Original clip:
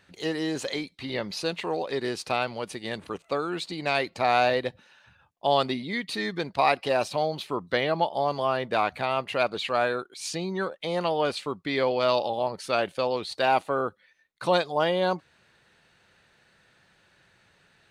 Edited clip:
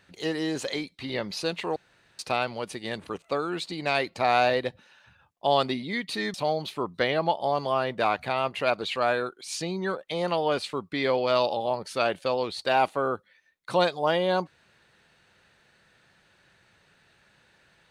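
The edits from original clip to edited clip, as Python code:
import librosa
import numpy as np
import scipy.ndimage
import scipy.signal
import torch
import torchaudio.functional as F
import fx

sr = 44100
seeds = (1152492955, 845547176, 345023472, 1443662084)

y = fx.edit(x, sr, fx.room_tone_fill(start_s=1.76, length_s=0.43),
    fx.cut(start_s=6.34, length_s=0.73), tone=tone)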